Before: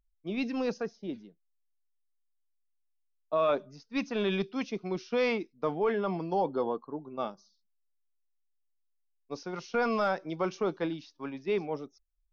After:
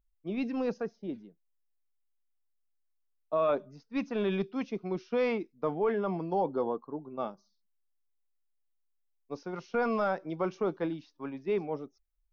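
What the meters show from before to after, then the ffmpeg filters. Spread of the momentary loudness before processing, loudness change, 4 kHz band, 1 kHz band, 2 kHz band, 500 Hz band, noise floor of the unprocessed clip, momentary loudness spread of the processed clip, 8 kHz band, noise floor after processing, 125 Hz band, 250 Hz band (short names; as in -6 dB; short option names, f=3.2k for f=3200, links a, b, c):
11 LU, -0.5 dB, -7.0 dB, -1.5 dB, -3.5 dB, -0.5 dB, -76 dBFS, 11 LU, n/a, -76 dBFS, 0.0 dB, 0.0 dB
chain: -af "equalizer=f=5.7k:w=0.44:g=-9"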